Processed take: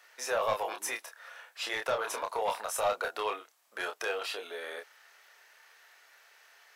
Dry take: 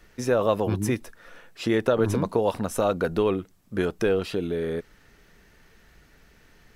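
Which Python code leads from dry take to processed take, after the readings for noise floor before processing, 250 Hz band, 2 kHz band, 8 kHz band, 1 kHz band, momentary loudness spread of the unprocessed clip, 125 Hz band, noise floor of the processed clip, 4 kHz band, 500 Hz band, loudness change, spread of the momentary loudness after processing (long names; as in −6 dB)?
−58 dBFS, −26.0 dB, −0.5 dB, +0.5 dB, −1.5 dB, 8 LU, −29.0 dB, −64 dBFS, 0.0 dB, −10.5 dB, −8.0 dB, 15 LU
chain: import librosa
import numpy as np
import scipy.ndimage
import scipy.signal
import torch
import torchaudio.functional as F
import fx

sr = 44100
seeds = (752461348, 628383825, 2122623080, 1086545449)

y = scipy.signal.sosfilt(scipy.signal.butter(4, 660.0, 'highpass', fs=sr, output='sos'), x)
y = 10.0 ** (-23.5 / 20.0) * np.tanh(y / 10.0 ** (-23.5 / 20.0))
y = fx.doubler(y, sr, ms=28.0, db=-5)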